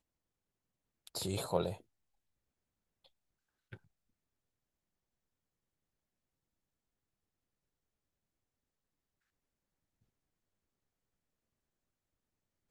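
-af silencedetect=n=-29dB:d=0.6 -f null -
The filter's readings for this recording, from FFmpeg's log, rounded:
silence_start: 0.00
silence_end: 1.16 | silence_duration: 1.16
silence_start: 1.69
silence_end: 12.71 | silence_duration: 11.02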